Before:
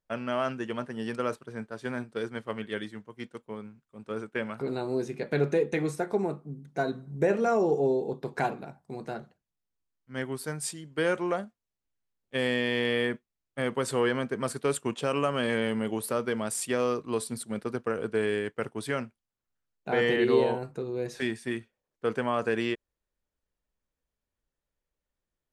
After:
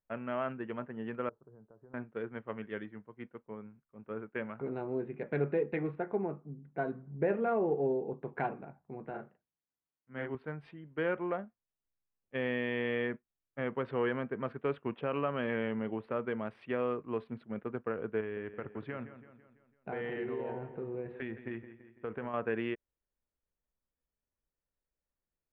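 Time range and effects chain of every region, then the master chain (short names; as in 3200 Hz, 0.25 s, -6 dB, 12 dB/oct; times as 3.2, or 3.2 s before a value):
1.29–1.94 bell 240 Hz -9 dB 0.24 oct + compressor, threshold -46 dBFS + Gaussian blur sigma 8.3 samples
9.1–10.35 HPF 160 Hz 6 dB/oct + doubler 37 ms -2 dB
18.2–22.34 bell 78 Hz +8 dB 0.6 oct + compressor 5:1, threshold -28 dBFS + feedback echo 0.167 s, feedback 51%, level -12 dB
whole clip: Wiener smoothing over 9 samples; inverse Chebyshev low-pass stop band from 6600 Hz, stop band 50 dB; gain -5.5 dB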